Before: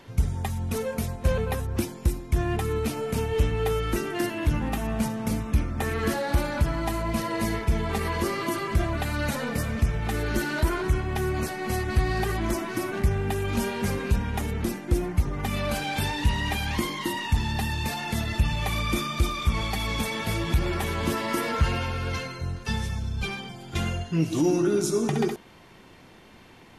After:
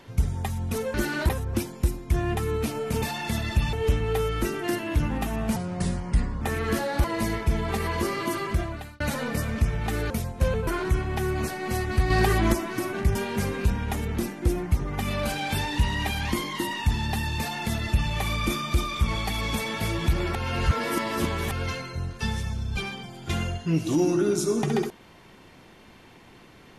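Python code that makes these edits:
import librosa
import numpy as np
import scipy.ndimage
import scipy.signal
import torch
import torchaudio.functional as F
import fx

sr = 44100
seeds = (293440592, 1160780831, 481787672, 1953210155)

y = fx.edit(x, sr, fx.swap(start_s=0.94, length_s=0.57, other_s=10.31, other_length_s=0.35),
    fx.speed_span(start_s=5.07, length_s=0.69, speed=0.81),
    fx.cut(start_s=6.39, length_s=0.86),
    fx.fade_out_span(start_s=8.66, length_s=0.55),
    fx.clip_gain(start_s=12.09, length_s=0.43, db=5.5),
    fx.cut(start_s=13.14, length_s=0.47),
    fx.duplicate(start_s=17.85, length_s=0.71, to_s=3.24),
    fx.reverse_span(start_s=20.81, length_s=1.16), tone=tone)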